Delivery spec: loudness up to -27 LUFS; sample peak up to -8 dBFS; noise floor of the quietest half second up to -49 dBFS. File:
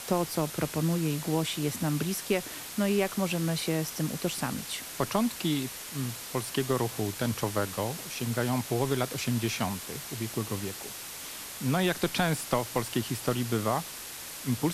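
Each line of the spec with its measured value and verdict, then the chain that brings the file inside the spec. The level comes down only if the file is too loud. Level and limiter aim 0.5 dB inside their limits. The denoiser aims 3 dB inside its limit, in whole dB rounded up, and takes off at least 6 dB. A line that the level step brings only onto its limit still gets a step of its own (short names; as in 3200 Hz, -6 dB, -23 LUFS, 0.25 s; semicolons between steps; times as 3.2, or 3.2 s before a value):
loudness -30.5 LUFS: OK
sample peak -12.5 dBFS: OK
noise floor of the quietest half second -41 dBFS: fail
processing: denoiser 11 dB, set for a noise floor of -41 dBFS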